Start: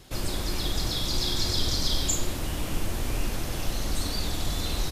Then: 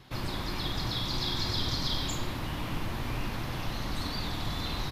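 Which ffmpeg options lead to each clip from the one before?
-af "equalizer=f=125:t=o:w=1:g=9,equalizer=f=250:t=o:w=1:g=5,equalizer=f=1k:t=o:w=1:g=10,equalizer=f=2k:t=o:w=1:g=6,equalizer=f=4k:t=o:w=1:g=6,equalizer=f=8k:t=o:w=1:g=-8,volume=-8.5dB"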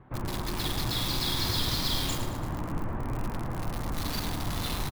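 -filter_complex "[0:a]acrossover=split=1700[a][b];[b]acrusher=bits=5:mix=0:aa=0.000001[c];[a][c]amix=inputs=2:normalize=0,aecho=1:1:110|220|330|440|550:0.282|0.144|0.0733|0.0374|0.0191,volume=1.5dB"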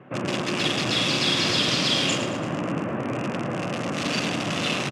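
-af "highpass=f=150:w=0.5412,highpass=f=150:w=1.3066,equalizer=f=560:t=q:w=4:g=6,equalizer=f=910:t=q:w=4:g=-8,equalizer=f=2.7k:t=q:w=4:g=10,equalizer=f=4.1k:t=q:w=4:g=-7,lowpass=f=7.5k:w=0.5412,lowpass=f=7.5k:w=1.3066,volume=9dB"

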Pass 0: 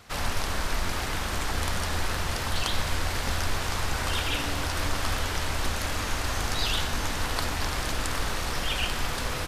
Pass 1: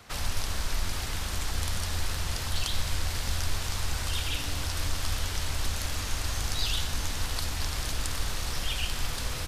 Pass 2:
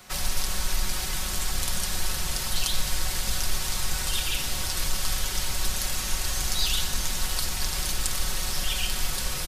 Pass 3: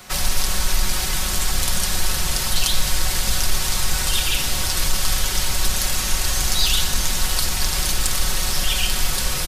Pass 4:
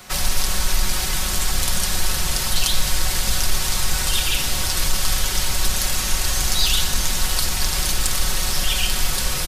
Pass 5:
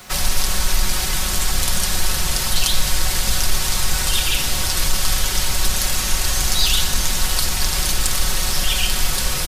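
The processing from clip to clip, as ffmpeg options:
-filter_complex "[0:a]acrossover=split=140|3000[a][b][c];[b]acompressor=threshold=-40dB:ratio=4[d];[a][d][c]amix=inputs=3:normalize=0"
-af "highshelf=f=6k:g=9,aecho=1:1:5.4:0.65"
-af "acontrast=87"
-af anull
-af "acrusher=bits=7:mix=0:aa=0.5,volume=1.5dB"

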